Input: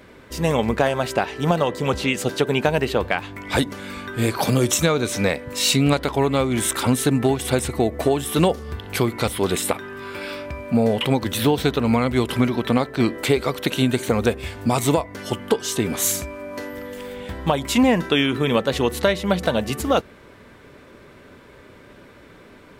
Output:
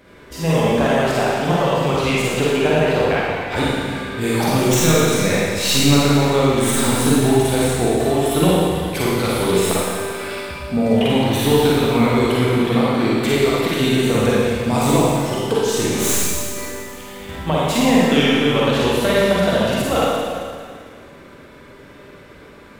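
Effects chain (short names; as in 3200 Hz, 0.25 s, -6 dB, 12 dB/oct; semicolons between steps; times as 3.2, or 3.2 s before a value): tracing distortion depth 0.036 ms; 2.22–4.21 high shelf 5000 Hz -7 dB; Schroeder reverb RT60 2 s, DRR -7 dB; gain -3.5 dB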